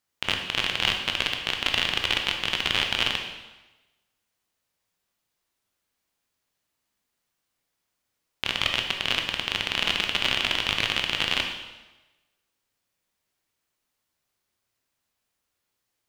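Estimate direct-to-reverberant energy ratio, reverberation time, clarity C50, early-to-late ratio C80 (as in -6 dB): 3.0 dB, 1.1 s, 5.5 dB, 7.5 dB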